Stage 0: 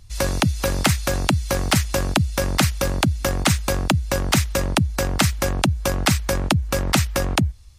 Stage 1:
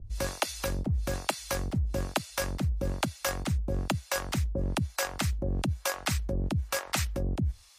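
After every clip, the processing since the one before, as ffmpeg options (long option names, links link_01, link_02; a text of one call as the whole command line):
ffmpeg -i in.wav -filter_complex "[0:a]acrossover=split=560[link_01][link_02];[link_01]aeval=exprs='val(0)*(1-1/2+1/2*cos(2*PI*1.1*n/s))':channel_layout=same[link_03];[link_02]aeval=exprs='val(0)*(1-1/2-1/2*cos(2*PI*1.1*n/s))':channel_layout=same[link_04];[link_03][link_04]amix=inputs=2:normalize=0,areverse,acompressor=threshold=-31dB:ratio=6,areverse,volume=4dB" out.wav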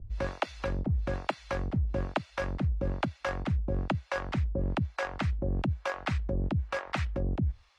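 ffmpeg -i in.wav -af "lowpass=2400" out.wav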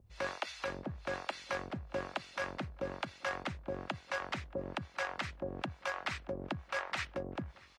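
ffmpeg -i in.wav -filter_complex "[0:a]highpass=frequency=1000:poles=1,alimiter=level_in=4.5dB:limit=-24dB:level=0:latency=1:release=56,volume=-4.5dB,asplit=2[link_01][link_02];[link_02]adelay=629,lowpass=frequency=2100:poles=1,volume=-20dB,asplit=2[link_03][link_04];[link_04]adelay=629,lowpass=frequency=2100:poles=1,volume=0.39,asplit=2[link_05][link_06];[link_06]adelay=629,lowpass=frequency=2100:poles=1,volume=0.39[link_07];[link_01][link_03][link_05][link_07]amix=inputs=4:normalize=0,volume=4dB" out.wav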